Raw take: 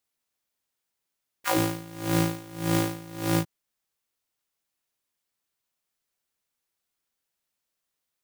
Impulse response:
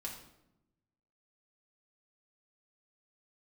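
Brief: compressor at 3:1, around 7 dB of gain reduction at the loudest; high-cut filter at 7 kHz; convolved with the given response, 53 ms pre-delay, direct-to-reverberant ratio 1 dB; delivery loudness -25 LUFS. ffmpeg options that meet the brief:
-filter_complex "[0:a]lowpass=7000,acompressor=threshold=0.0355:ratio=3,asplit=2[s0][s1];[1:a]atrim=start_sample=2205,adelay=53[s2];[s1][s2]afir=irnorm=-1:irlink=0,volume=1.06[s3];[s0][s3]amix=inputs=2:normalize=0,volume=2.37"

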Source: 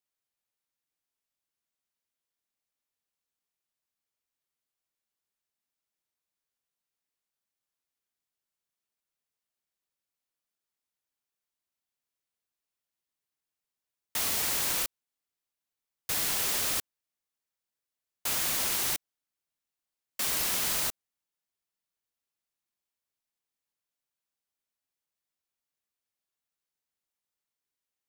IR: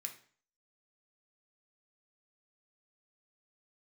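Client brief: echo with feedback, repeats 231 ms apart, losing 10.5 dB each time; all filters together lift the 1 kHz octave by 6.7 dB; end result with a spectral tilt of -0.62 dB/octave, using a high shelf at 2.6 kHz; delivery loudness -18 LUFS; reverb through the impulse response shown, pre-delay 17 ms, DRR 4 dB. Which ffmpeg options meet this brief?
-filter_complex "[0:a]equalizer=f=1000:t=o:g=9,highshelf=f=2600:g=-4,aecho=1:1:231|462|693:0.299|0.0896|0.0269,asplit=2[s0][s1];[1:a]atrim=start_sample=2205,adelay=17[s2];[s1][s2]afir=irnorm=-1:irlink=0,volume=0.891[s3];[s0][s3]amix=inputs=2:normalize=0,volume=3.55"

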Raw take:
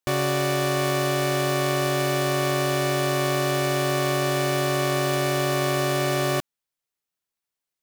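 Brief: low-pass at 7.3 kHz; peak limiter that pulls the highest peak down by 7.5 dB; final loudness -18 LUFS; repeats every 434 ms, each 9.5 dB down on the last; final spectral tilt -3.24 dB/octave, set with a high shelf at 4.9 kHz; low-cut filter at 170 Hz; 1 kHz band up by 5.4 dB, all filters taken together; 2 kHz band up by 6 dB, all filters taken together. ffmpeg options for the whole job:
-af "highpass=170,lowpass=7300,equalizer=f=1000:t=o:g=5.5,equalizer=f=2000:t=o:g=4.5,highshelf=f=4900:g=8,alimiter=limit=0.251:level=0:latency=1,aecho=1:1:434|868|1302|1736:0.335|0.111|0.0365|0.012,volume=1.88"

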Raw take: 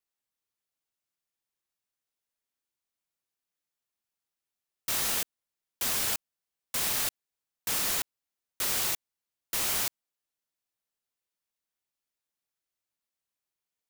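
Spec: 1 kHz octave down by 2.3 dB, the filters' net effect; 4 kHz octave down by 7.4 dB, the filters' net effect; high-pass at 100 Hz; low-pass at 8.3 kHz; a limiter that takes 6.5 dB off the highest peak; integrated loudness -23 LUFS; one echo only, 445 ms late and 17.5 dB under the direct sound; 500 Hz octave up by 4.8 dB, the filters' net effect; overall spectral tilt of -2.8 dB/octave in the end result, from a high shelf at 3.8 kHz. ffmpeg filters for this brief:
-af "highpass=100,lowpass=8300,equalizer=f=500:t=o:g=7.5,equalizer=f=1000:t=o:g=-4.5,highshelf=f=3800:g=-7,equalizer=f=4000:t=o:g=-4.5,alimiter=level_in=1.68:limit=0.0631:level=0:latency=1,volume=0.596,aecho=1:1:445:0.133,volume=7.08"

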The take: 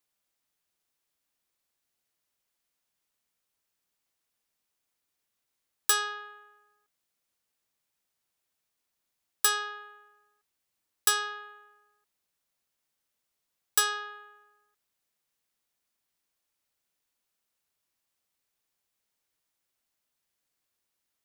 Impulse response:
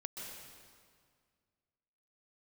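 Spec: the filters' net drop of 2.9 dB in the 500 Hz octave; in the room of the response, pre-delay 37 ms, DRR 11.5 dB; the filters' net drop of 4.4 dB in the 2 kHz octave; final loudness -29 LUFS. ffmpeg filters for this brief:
-filter_complex "[0:a]equalizer=f=500:t=o:g=-3.5,equalizer=f=2000:t=o:g=-5.5,asplit=2[s0][s1];[1:a]atrim=start_sample=2205,adelay=37[s2];[s1][s2]afir=irnorm=-1:irlink=0,volume=0.316[s3];[s0][s3]amix=inputs=2:normalize=0"

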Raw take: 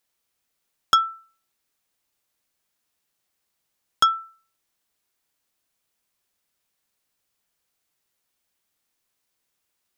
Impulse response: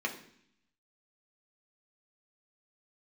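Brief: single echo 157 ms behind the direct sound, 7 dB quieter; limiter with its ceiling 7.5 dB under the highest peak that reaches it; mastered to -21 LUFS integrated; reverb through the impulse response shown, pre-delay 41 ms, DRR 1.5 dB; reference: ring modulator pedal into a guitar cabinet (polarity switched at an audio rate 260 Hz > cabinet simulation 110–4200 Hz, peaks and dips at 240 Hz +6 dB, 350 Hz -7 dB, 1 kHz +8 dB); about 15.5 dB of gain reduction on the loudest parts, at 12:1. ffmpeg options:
-filter_complex "[0:a]acompressor=threshold=0.0398:ratio=12,alimiter=limit=0.178:level=0:latency=1,aecho=1:1:157:0.447,asplit=2[s0][s1];[1:a]atrim=start_sample=2205,adelay=41[s2];[s1][s2]afir=irnorm=-1:irlink=0,volume=0.422[s3];[s0][s3]amix=inputs=2:normalize=0,aeval=exprs='val(0)*sgn(sin(2*PI*260*n/s))':c=same,highpass=110,equalizer=f=240:t=q:w=4:g=6,equalizer=f=350:t=q:w=4:g=-7,equalizer=f=1000:t=q:w=4:g=8,lowpass=f=4200:w=0.5412,lowpass=f=4200:w=1.3066,volume=3.35"

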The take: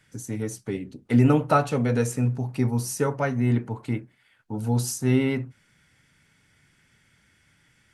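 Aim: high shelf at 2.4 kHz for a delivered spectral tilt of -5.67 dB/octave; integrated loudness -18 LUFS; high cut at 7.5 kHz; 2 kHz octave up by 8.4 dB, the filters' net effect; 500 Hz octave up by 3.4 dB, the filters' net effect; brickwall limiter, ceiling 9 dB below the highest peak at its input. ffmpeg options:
-af "lowpass=7500,equalizer=f=500:t=o:g=3.5,equalizer=f=2000:t=o:g=8,highshelf=f=2400:g=5,volume=2.24,alimiter=limit=0.562:level=0:latency=1"

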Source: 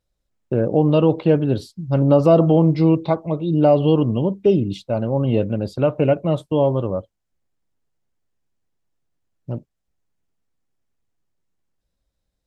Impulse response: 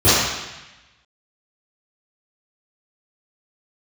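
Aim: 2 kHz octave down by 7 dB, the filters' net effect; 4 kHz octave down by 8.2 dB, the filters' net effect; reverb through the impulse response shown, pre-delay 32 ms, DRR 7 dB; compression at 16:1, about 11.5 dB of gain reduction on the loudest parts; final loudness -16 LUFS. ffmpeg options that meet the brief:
-filter_complex "[0:a]equalizer=f=2000:t=o:g=-8.5,equalizer=f=4000:t=o:g=-7.5,acompressor=threshold=0.0891:ratio=16,asplit=2[s0][s1];[1:a]atrim=start_sample=2205,adelay=32[s2];[s1][s2]afir=irnorm=-1:irlink=0,volume=0.0224[s3];[s0][s3]amix=inputs=2:normalize=0,volume=3.16"

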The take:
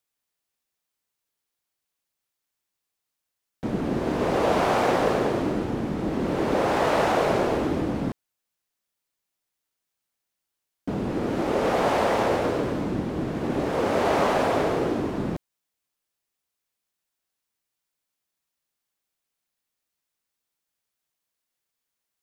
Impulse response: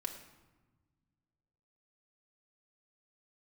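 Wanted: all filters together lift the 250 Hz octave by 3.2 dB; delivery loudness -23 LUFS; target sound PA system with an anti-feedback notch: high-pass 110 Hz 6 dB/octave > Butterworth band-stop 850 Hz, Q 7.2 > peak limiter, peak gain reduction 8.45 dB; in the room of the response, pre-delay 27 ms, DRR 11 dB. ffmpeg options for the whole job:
-filter_complex "[0:a]equalizer=f=250:t=o:g=5,asplit=2[s0][s1];[1:a]atrim=start_sample=2205,adelay=27[s2];[s1][s2]afir=irnorm=-1:irlink=0,volume=0.299[s3];[s0][s3]amix=inputs=2:normalize=0,highpass=f=110:p=1,asuperstop=centerf=850:order=8:qfactor=7.2,volume=1.5,alimiter=limit=0.2:level=0:latency=1"

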